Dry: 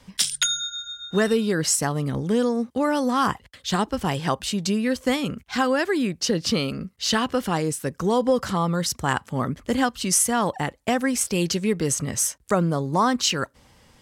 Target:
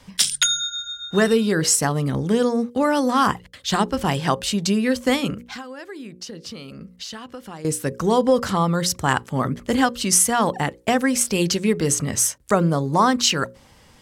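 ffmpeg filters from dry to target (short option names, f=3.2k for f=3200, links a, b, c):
-filter_complex "[0:a]bandreject=f=60:t=h:w=6,bandreject=f=120:t=h:w=6,bandreject=f=180:t=h:w=6,bandreject=f=240:t=h:w=6,bandreject=f=300:t=h:w=6,bandreject=f=360:t=h:w=6,bandreject=f=420:t=h:w=6,bandreject=f=480:t=h:w=6,bandreject=f=540:t=h:w=6,asettb=1/sr,asplit=3[a][b][c];[a]atrim=end=5.404[d];[b]atrim=start=5.4:end=7.65,asetpts=PTS-STARTPTS,afade=t=in:d=0.004:c=qsin,afade=t=out:st=2.246:d=0.004:c=qsin,acompressor=threshold=-37dB:ratio=8[e];[c]atrim=start=7.646[f];[d][e]acrossfade=d=0.004:c1=hsin:c2=qsin[g];[g][f]acrossfade=d=0.004:c1=qsin:c2=hsin,volume=3.5dB"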